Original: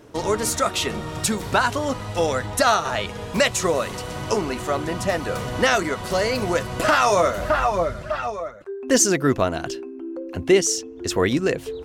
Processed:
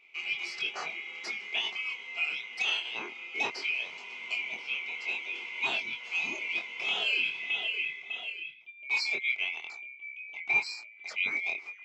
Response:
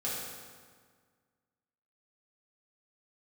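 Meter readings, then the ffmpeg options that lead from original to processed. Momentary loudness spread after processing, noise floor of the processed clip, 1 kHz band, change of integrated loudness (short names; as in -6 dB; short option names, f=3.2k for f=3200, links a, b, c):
11 LU, -51 dBFS, -21.5 dB, -9.5 dB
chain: -af "afftfilt=real='real(if(lt(b,920),b+92*(1-2*mod(floor(b/92),2)),b),0)':imag='imag(if(lt(b,920),b+92*(1-2*mod(floor(b/92),2)),b),0)':win_size=2048:overlap=0.75,highpass=300,equalizer=f=390:t=q:w=4:g=6,equalizer=f=560:t=q:w=4:g=-6,equalizer=f=1.7k:t=q:w=4:g=-7,equalizer=f=3.7k:t=q:w=4:g=-9,lowpass=f=4.8k:w=0.5412,lowpass=f=4.8k:w=1.3066,flanger=delay=22.5:depth=2.7:speed=0.18,volume=-6.5dB"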